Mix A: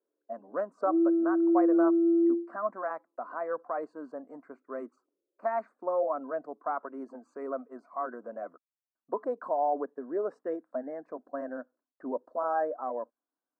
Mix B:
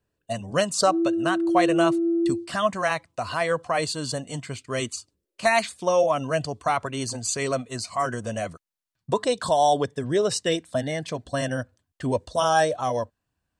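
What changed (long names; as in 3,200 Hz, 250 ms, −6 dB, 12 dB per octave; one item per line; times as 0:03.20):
speech +8.0 dB
master: remove elliptic band-pass filter 260–1,400 Hz, stop band 40 dB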